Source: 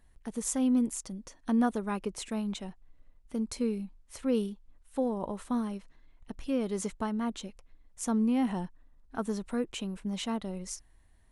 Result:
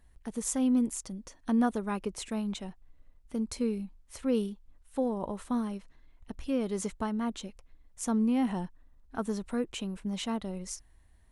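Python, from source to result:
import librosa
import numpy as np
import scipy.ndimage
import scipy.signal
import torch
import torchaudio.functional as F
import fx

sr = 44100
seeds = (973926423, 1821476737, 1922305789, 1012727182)

y = fx.peak_eq(x, sr, hz=63.0, db=5.0, octaves=0.77)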